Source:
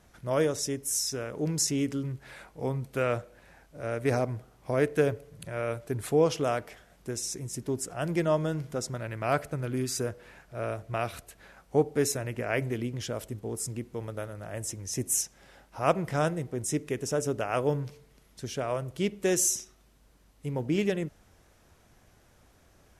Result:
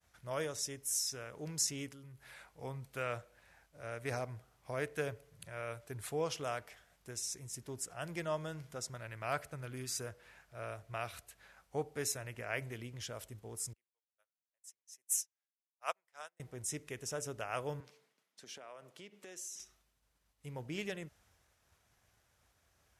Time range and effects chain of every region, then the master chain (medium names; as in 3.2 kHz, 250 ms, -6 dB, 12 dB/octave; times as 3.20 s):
1.88–2.34 s: compression 2:1, threshold -43 dBFS + peaking EQ 11 kHz +9 dB 0.31 oct
13.73–16.40 s: high-pass 720 Hz + treble shelf 5.1 kHz +2.5 dB + upward expansion 2.5:1, over -45 dBFS
17.80–19.60 s: high-pass 200 Hz 24 dB/octave + treble shelf 8.6 kHz -9.5 dB + compression 5:1, threshold -37 dBFS
whole clip: high-pass 61 Hz; expander -58 dBFS; peaking EQ 270 Hz -11 dB 2.4 oct; trim -5.5 dB